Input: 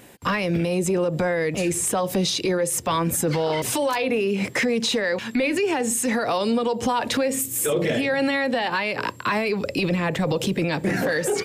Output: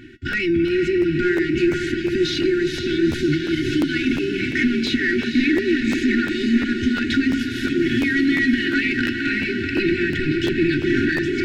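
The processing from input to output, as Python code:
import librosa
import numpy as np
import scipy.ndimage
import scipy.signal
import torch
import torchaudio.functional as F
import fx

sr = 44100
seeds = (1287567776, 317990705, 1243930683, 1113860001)

p1 = scipy.signal.medfilt(x, 5)
p2 = fx.peak_eq(p1, sr, hz=850.0, db=-5.0, octaves=0.74)
p3 = p2 + 0.98 * np.pad(p2, (int(2.7 * sr / 1000.0), 0))[:len(p2)]
p4 = fx.over_compress(p3, sr, threshold_db=-24.0, ratio=-1.0)
p5 = p3 + (p4 * 10.0 ** (2.0 / 20.0))
p6 = fx.comb_fb(p5, sr, f0_hz=240.0, decay_s=0.22, harmonics='all', damping=0.0, mix_pct=60)
p7 = 10.0 ** (-16.0 / 20.0) * (np.abs((p6 / 10.0 ** (-16.0 / 20.0) + 3.0) % 4.0 - 2.0) - 1.0)
p8 = fx.brickwall_bandstop(p7, sr, low_hz=390.0, high_hz=1400.0)
p9 = fx.spacing_loss(p8, sr, db_at_10k=25)
p10 = fx.echo_diffused(p9, sr, ms=470, feedback_pct=66, wet_db=-6.0)
p11 = fx.buffer_crackle(p10, sr, first_s=0.31, period_s=0.35, block=512, kind='repeat')
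y = p11 * 10.0 ** (6.5 / 20.0)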